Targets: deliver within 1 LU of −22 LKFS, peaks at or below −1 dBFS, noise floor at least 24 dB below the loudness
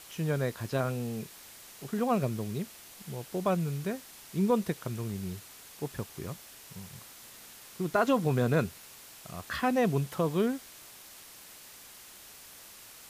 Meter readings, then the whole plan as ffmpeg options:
background noise floor −51 dBFS; target noise floor −56 dBFS; integrated loudness −31.5 LKFS; sample peak −13.0 dBFS; target loudness −22.0 LKFS
→ -af "afftdn=noise_reduction=6:noise_floor=-51"
-af "volume=9.5dB"

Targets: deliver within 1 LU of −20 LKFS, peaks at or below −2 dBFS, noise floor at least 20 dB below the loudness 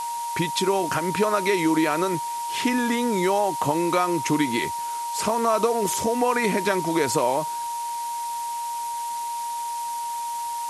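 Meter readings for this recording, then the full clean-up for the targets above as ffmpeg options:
interfering tone 940 Hz; level of the tone −27 dBFS; background noise floor −30 dBFS; target noise floor −44 dBFS; integrated loudness −24.0 LKFS; sample peak −8.5 dBFS; target loudness −20.0 LKFS
→ -af "bandreject=frequency=940:width=30"
-af "afftdn=noise_reduction=14:noise_floor=-30"
-af "volume=4dB"

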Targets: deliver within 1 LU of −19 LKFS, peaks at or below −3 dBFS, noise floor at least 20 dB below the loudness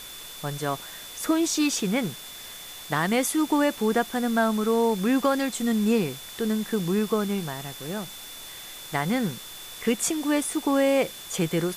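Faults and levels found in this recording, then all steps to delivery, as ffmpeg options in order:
interfering tone 3,500 Hz; level of the tone −43 dBFS; background noise floor −41 dBFS; target noise floor −46 dBFS; integrated loudness −25.5 LKFS; sample peak −11.0 dBFS; target loudness −19.0 LKFS
→ -af "bandreject=frequency=3500:width=30"
-af "afftdn=noise_reduction=6:noise_floor=-41"
-af "volume=6.5dB"

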